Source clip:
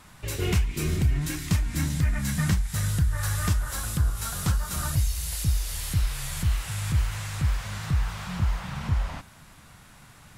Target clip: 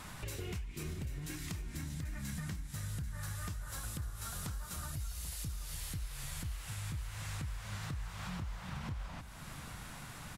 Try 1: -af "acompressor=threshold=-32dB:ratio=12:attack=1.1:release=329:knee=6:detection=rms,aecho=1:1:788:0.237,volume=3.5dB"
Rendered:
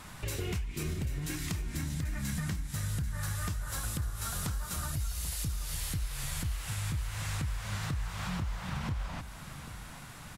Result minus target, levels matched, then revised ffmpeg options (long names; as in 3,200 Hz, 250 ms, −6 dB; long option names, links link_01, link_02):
downward compressor: peak gain reduction −6.5 dB
-af "acompressor=threshold=-39dB:ratio=12:attack=1.1:release=329:knee=6:detection=rms,aecho=1:1:788:0.237,volume=3.5dB"